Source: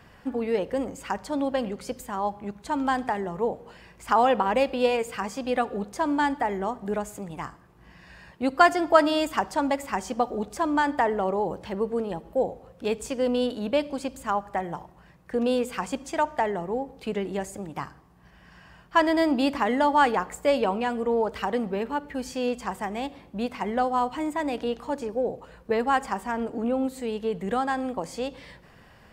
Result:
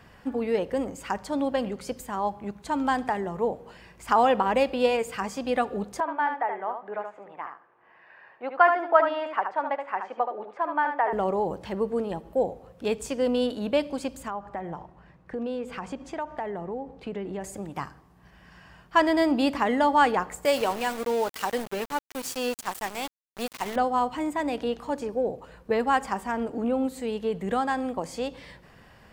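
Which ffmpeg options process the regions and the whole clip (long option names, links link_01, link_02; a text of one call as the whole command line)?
ffmpeg -i in.wav -filter_complex "[0:a]asettb=1/sr,asplit=3[link_01][link_02][link_03];[link_01]atrim=end=6.004[link_04];[link_02]atrim=start=6:end=11.13,asetpts=PTS-STARTPTS,afade=type=in:duration=0.004:curve=qsin,afade=type=out:start_time=5.126:duration=0.004:curve=qsin,highpass=120,lowpass=3300,acrossover=split=460 2400:gain=0.0708 1 0.126[link_05][link_06][link_07];[link_05][link_06][link_07]amix=inputs=3:normalize=0,aecho=1:1:75:0.473,atrim=end_sample=226233[link_08];[link_03]atrim=start=11.126[link_09];[link_04][link_08]acrossfade=duration=0.004:curve1=hsin:curve2=qsin[link_10];[link_10][link_09]acrossfade=duration=0.004:curve1=qsin:curve2=hsin,asettb=1/sr,asplit=3[link_11][link_12][link_13];[link_11]atrim=end=14.284[link_14];[link_12]atrim=start=14.28:end=17.44,asetpts=PTS-STARTPTS,afade=type=in:duration=0.004:curve=qsin,afade=type=out:start_time=3.156:duration=0.004:curve=qsin,acompressor=threshold=-32dB:ratio=2.5:attack=3.2:release=140:knee=1:detection=peak,aemphasis=mode=reproduction:type=75fm[link_15];[link_13]atrim=start=17.436[link_16];[link_14][link_15]acrossfade=duration=0.004:curve1=hsin:curve2=qsin[link_17];[link_17][link_16]acrossfade=duration=0.004:curve1=qsin:curve2=hsin,asettb=1/sr,asplit=3[link_18][link_19][link_20];[link_18]atrim=end=20.454[link_21];[link_19]atrim=start=20.45:end=23.76,asetpts=PTS-STARTPTS,afade=type=in:duration=0.004:curve=qsin,afade=type=out:start_time=3.306:duration=0.004:curve=qsin,aemphasis=mode=production:type=bsi,aeval=exprs='val(0)*gte(abs(val(0)),0.0237)':channel_layout=same[link_22];[link_20]atrim=start=23.756[link_23];[link_21][link_22]acrossfade=duration=0.004:curve1=hsin:curve2=qsin[link_24];[link_24][link_23]acrossfade=duration=0.004:curve1=qsin:curve2=hsin" out.wav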